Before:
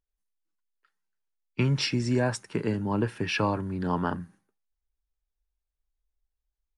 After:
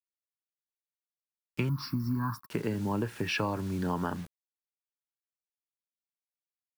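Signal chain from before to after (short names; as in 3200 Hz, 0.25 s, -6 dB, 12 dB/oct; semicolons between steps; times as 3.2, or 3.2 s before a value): requantised 8-bit, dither none; 1.69–2.49 EQ curve 280 Hz 0 dB, 420 Hz -24 dB, 620 Hz -28 dB, 1100 Hz +13 dB, 2000 Hz -18 dB, 3000 Hz -26 dB, 4700 Hz -6 dB, 7800 Hz -25 dB, 12000 Hz +4 dB; compressor 3:1, threshold -28 dBFS, peak gain reduction 6 dB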